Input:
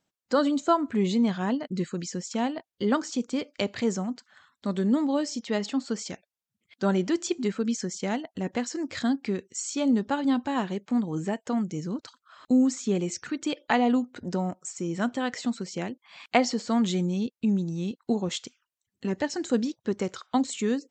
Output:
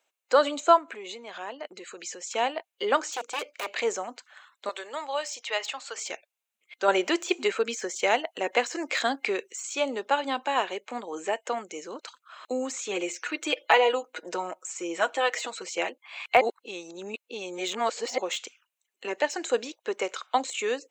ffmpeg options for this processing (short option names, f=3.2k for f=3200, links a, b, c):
-filter_complex "[0:a]asettb=1/sr,asplit=3[a][b][c];[a]atrim=end=0.784[d];[b]atrim=start=0.78:end=2.28,asetpts=PTS-STARTPTS,afade=t=in:d=0.004:c=qsin,afade=t=out:st=1.496:d=0.004:c=qsin,acompressor=threshold=-34dB:ratio=4:attack=3.2:release=140:knee=1:detection=peak[e];[c]atrim=start=2.276[f];[d][e]acrossfade=d=0.004:c1=hsin:c2=qsin[g];[g][f]acrossfade=d=0.004:c1=qsin:c2=hsin,asettb=1/sr,asplit=3[h][i][j];[h]atrim=end=3.114[k];[i]atrim=start=3.11:end=3.69,asetpts=PTS-STARTPTS,afade=t=in:d=0.004:c=qsin,afade=t=out:st=0.576:d=0.004:c=qsin,aeval=exprs='0.0355*(abs(mod(val(0)/0.0355+3,4)-2)-1)':c=same[l];[j]atrim=start=3.686[m];[k][l]acrossfade=d=0.004:c1=hsin:c2=qsin[n];[n][m]acrossfade=d=0.004:c1=qsin:c2=hsin,asettb=1/sr,asplit=3[o][p][q];[o]atrim=end=4.694[r];[p]atrim=start=4.69:end=5.98,asetpts=PTS-STARTPTS,afade=t=in:d=0.004:c=qsin,afade=t=out:st=1.286:d=0.004:c=qsin,highpass=760[s];[q]atrim=start=5.976[t];[r][s]acrossfade=d=0.004:c1=hsin:c2=qsin[u];[u][t]acrossfade=d=0.004:c1=qsin:c2=hsin,asettb=1/sr,asplit=3[v][w][x];[v]atrim=end=12.794[y];[w]atrim=start=12.79:end=15.9,asetpts=PTS-STARTPTS,afade=t=in:d=0.004:c=qsin,afade=t=out:st=3.106:d=0.004:c=qsin,aecho=1:1:6.2:0.65,atrim=end_sample=137151[z];[x]atrim=start=15.896[aa];[y][z]acrossfade=d=0.004:c1=hsin:c2=qsin[ab];[ab][aa]acrossfade=d=0.004:c1=qsin:c2=hsin,asplit=5[ac][ad][ae][af][ag];[ac]atrim=end=6.882[ah];[ad]atrim=start=6.878:end=9.632,asetpts=PTS-STARTPTS,volume=4dB[ai];[ae]atrim=start=9.628:end=16.412[aj];[af]atrim=start=16.408:end=18.182,asetpts=PTS-STARTPTS,areverse[ak];[ag]atrim=start=18.178[al];[ah][ai]acrossfade=d=0.004:c1=hsin:c2=hsin[am];[am][aj]acrossfade=d=0.004:c1=hsin:c2=hsin[an];[an][ak]acrossfade=d=0.004:c1=hsin:c2=hsin[ao];[ao][al]acrossfade=d=0.004:c1=hsin:c2=hsin,highpass=f=450:w=0.5412,highpass=f=450:w=1.3066,deesser=0.8,superequalizer=12b=1.78:14b=0.562,volume=5dB"